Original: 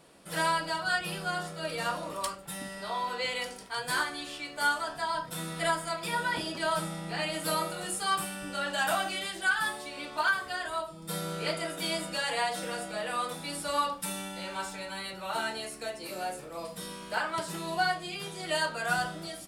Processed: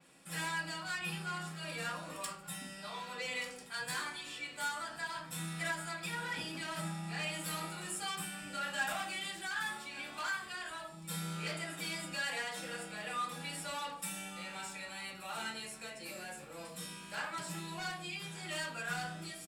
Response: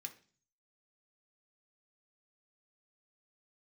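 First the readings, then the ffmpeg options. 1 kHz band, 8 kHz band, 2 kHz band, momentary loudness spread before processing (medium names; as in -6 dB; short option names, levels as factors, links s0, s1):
-10.5 dB, -4.5 dB, -7.0 dB, 9 LU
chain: -filter_complex "[0:a]adynamicequalizer=threshold=0.00316:dfrequency=9100:dqfactor=0.79:tfrequency=9100:tqfactor=0.79:attack=5:release=100:ratio=0.375:range=2:mode=cutabove:tftype=bell,asoftclip=type=tanh:threshold=0.0422,aecho=1:1:1177:0.126[s0];[1:a]atrim=start_sample=2205[s1];[s0][s1]afir=irnorm=-1:irlink=0,volume=1.12"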